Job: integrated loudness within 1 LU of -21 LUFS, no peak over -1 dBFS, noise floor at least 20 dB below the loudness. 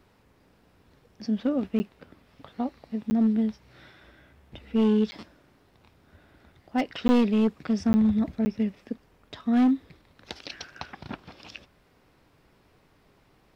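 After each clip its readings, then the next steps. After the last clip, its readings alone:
clipped samples 1.1%; clipping level -17.0 dBFS; dropouts 6; longest dropout 10 ms; loudness -26.0 LUFS; peak level -17.0 dBFS; loudness target -21.0 LUFS
-> clip repair -17 dBFS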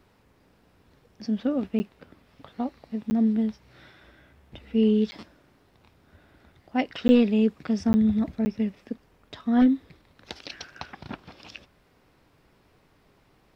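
clipped samples 0.0%; dropouts 6; longest dropout 10 ms
-> interpolate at 1.79/3.10/5.11/7.08/7.93/8.45 s, 10 ms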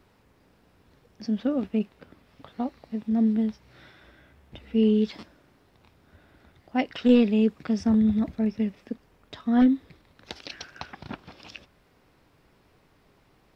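dropouts 0; loudness -25.0 LUFS; peak level -8.5 dBFS; loudness target -21.0 LUFS
-> trim +4 dB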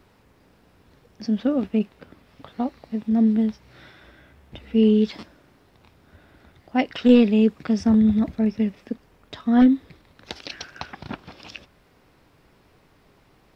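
loudness -21.0 LUFS; peak level -4.5 dBFS; noise floor -59 dBFS

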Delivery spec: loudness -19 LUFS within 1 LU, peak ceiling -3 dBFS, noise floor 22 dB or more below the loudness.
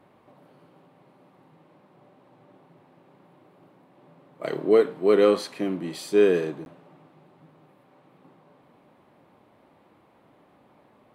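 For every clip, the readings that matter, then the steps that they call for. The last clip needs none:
dropouts 1; longest dropout 11 ms; loudness -23.0 LUFS; peak level -8.0 dBFS; loudness target -19.0 LUFS
-> interpolate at 6.65 s, 11 ms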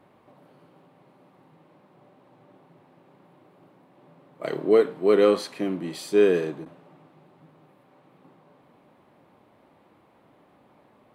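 dropouts 0; loudness -23.0 LUFS; peak level -8.0 dBFS; loudness target -19.0 LUFS
-> trim +4 dB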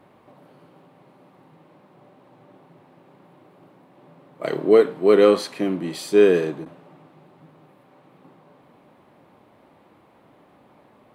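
loudness -19.0 LUFS; peak level -4.0 dBFS; noise floor -56 dBFS

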